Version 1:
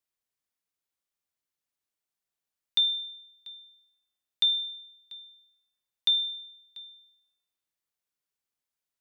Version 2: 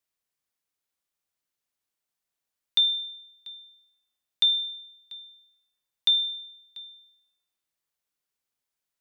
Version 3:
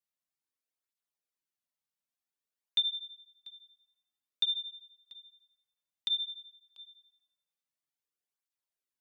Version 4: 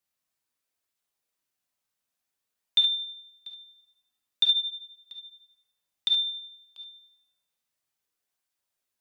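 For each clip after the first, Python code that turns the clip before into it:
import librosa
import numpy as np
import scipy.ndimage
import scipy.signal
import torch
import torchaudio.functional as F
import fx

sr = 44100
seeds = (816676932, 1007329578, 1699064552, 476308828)

y1 = fx.hum_notches(x, sr, base_hz=60, count=7)
y1 = y1 * librosa.db_to_amplitude(2.5)
y2 = fx.flanger_cancel(y1, sr, hz=0.53, depth_ms=3.1)
y2 = y2 * librosa.db_to_amplitude(-5.5)
y3 = fx.rev_gated(y2, sr, seeds[0], gate_ms=90, shape='rising', drr_db=4.0)
y3 = y3 * librosa.db_to_amplitude(6.5)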